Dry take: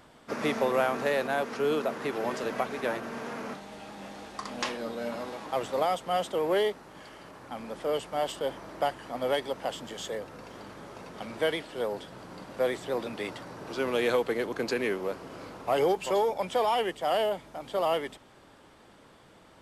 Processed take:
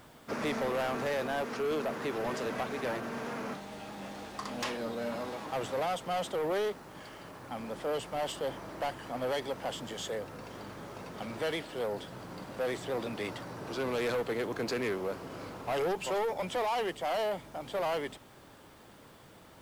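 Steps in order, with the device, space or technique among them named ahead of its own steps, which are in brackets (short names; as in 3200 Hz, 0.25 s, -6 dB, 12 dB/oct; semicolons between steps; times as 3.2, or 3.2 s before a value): open-reel tape (soft clip -28 dBFS, distortion -10 dB; bell 110 Hz +4 dB 1.16 oct; white noise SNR 32 dB)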